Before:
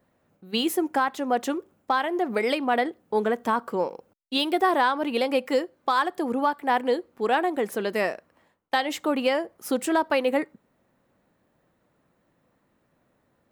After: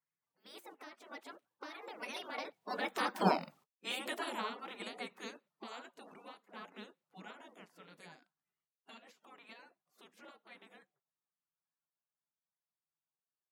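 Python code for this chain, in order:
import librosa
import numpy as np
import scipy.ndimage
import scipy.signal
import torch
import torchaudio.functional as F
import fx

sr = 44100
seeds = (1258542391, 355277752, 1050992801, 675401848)

y = fx.spec_quant(x, sr, step_db=30)
y = fx.doppler_pass(y, sr, speed_mps=49, closest_m=7.0, pass_at_s=3.29)
y = scipy.signal.sosfilt(scipy.signal.butter(4, 210.0, 'highpass', fs=sr, output='sos'), y)
y = fx.spec_gate(y, sr, threshold_db=-10, keep='weak')
y = fx.high_shelf(y, sr, hz=4500.0, db=-8.5)
y = fx.notch(y, sr, hz=1600.0, q=26.0)
y = y * 10.0 ** (14.5 / 20.0)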